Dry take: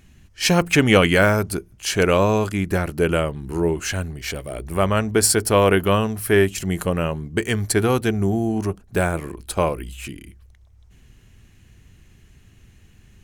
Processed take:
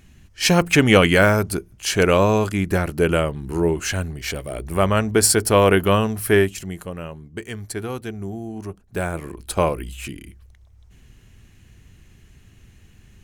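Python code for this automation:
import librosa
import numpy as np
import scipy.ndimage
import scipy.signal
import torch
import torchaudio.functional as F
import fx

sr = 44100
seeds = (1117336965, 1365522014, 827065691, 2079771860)

y = fx.gain(x, sr, db=fx.line((6.34, 1.0), (6.81, -10.0), (8.52, -10.0), (9.54, 1.0)))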